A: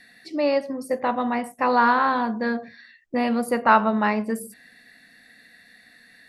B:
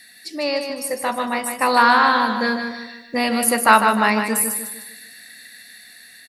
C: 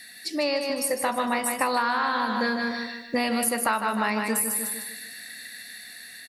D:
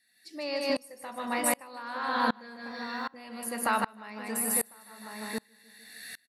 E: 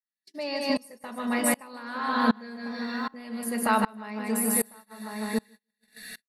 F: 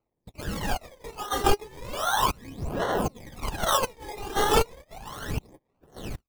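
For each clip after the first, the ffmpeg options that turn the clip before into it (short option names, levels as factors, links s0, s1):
-filter_complex "[0:a]dynaudnorm=f=620:g=5:m=3.76,crystalizer=i=7:c=0,asplit=2[s0][s1];[s1]aecho=0:1:152|304|456|608|760:0.473|0.199|0.0835|0.0351|0.0147[s2];[s0][s2]amix=inputs=2:normalize=0,volume=0.631"
-af "acompressor=threshold=0.0708:ratio=10,volume=1.19"
-filter_complex "[0:a]asplit=2[s0][s1];[s1]adelay=1050,volume=0.355,highshelf=f=4000:g=-23.6[s2];[s0][s2]amix=inputs=2:normalize=0,aeval=exprs='val(0)*pow(10,-30*if(lt(mod(-1.3*n/s,1),2*abs(-1.3)/1000),1-mod(-1.3*n/s,1)/(2*abs(-1.3)/1000),(mod(-1.3*n/s,1)-2*abs(-1.3)/1000)/(1-2*abs(-1.3)/1000))/20)':c=same,volume=1.33"
-af "lowshelf=f=460:g=6.5,aecho=1:1:4.7:0.57,agate=range=0.0178:threshold=0.00562:ratio=16:detection=peak"
-af "highpass=1300,acrusher=samples=25:mix=1:aa=0.000001:lfo=1:lforange=15:lforate=1.3,aphaser=in_gain=1:out_gain=1:delay=2.5:decay=0.74:speed=0.35:type=sinusoidal,volume=1.5"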